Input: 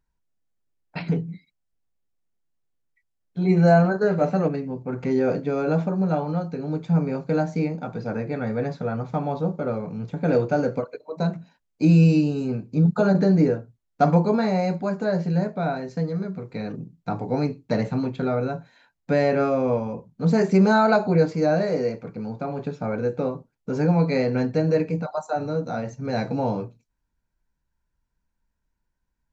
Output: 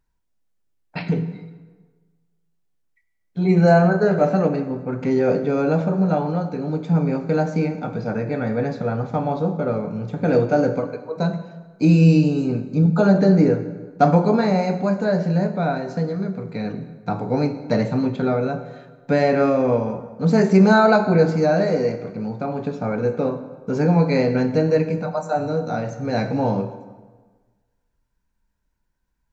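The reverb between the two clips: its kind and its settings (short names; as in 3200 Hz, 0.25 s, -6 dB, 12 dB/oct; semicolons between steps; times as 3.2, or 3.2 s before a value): plate-style reverb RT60 1.4 s, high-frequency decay 0.7×, DRR 8.5 dB; gain +3 dB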